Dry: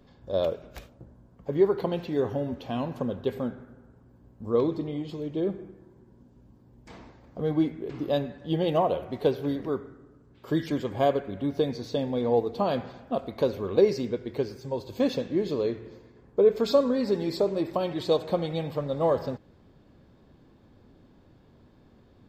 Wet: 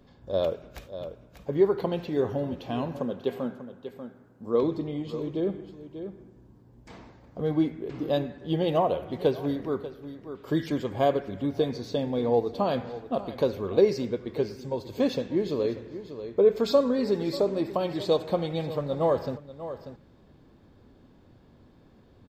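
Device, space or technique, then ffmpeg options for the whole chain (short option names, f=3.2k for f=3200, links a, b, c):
ducked delay: -filter_complex "[0:a]asplit=3[a][b][c];[b]adelay=590,volume=-8dB[d];[c]apad=whole_len=1008590[e];[d][e]sidechaincompress=threshold=-30dB:ratio=8:attack=23:release=1230[f];[a][f]amix=inputs=2:normalize=0,asettb=1/sr,asplit=3[g][h][i];[g]atrim=end=2.994[j];[h]atrim=start=2.99:end=4.63,asetpts=PTS-STARTPTS,afade=t=in:d=0.004:c=qsin,afade=t=out:st=1.636:d=0.004:c=qsin,highpass=170[k];[i]atrim=start=4.626[l];[j][k]acrossfade=d=0.004:c1=hsin:c2=qsin[m];[m][l]acrossfade=d=0.004:c1=qsin:c2=hsin"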